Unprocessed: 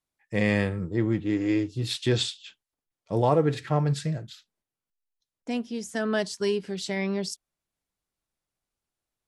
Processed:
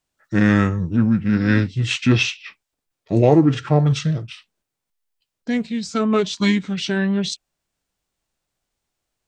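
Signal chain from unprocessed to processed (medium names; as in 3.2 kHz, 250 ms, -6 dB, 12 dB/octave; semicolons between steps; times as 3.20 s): formant shift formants -5 st; trim +8.5 dB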